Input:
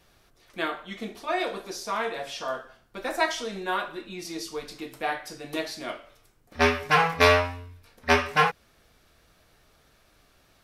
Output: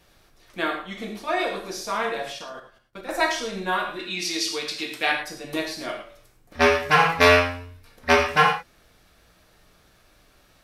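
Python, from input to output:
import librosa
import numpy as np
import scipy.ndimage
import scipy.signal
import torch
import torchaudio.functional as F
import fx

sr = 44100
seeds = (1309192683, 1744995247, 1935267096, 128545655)

y = fx.level_steps(x, sr, step_db=20, at=(2.32, 3.09))
y = fx.weighting(y, sr, curve='D', at=(3.99, 5.12))
y = fx.rev_gated(y, sr, seeds[0], gate_ms=130, shape='flat', drr_db=4.5)
y = y * 10.0 ** (2.0 / 20.0)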